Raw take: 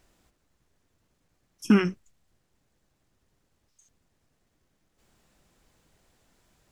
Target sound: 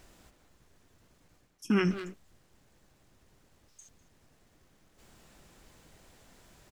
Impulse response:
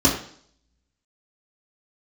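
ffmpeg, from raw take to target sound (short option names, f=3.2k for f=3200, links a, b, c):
-filter_complex "[0:a]areverse,acompressor=threshold=-34dB:ratio=4,areverse,asplit=2[a][b];[b]adelay=200,highpass=300,lowpass=3.4k,asoftclip=type=hard:threshold=-34.5dB,volume=-8dB[c];[a][c]amix=inputs=2:normalize=0,volume=7.5dB"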